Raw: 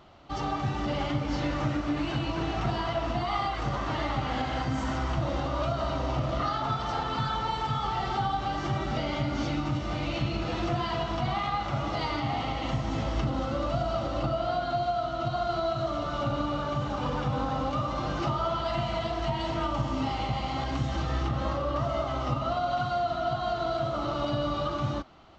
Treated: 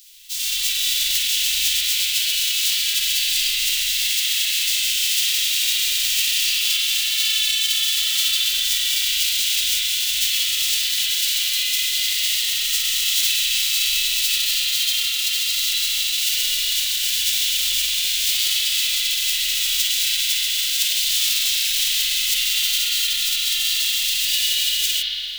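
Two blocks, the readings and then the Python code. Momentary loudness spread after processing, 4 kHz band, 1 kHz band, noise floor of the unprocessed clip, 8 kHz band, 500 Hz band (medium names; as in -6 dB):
1 LU, +23.0 dB, under -20 dB, -33 dBFS, no reading, under -40 dB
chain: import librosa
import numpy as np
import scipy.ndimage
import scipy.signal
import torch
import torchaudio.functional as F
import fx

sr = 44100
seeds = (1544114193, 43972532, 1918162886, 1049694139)

y = fx.envelope_flatten(x, sr, power=0.1)
y = scipy.signal.sosfilt(scipy.signal.cheby2(4, 80, [130.0, 660.0], 'bandstop', fs=sr, output='sos'), y)
y = fx.rev_spring(y, sr, rt60_s=3.0, pass_ms=(41,), chirp_ms=55, drr_db=-10.0)
y = F.gain(torch.from_numpy(y), 8.5).numpy()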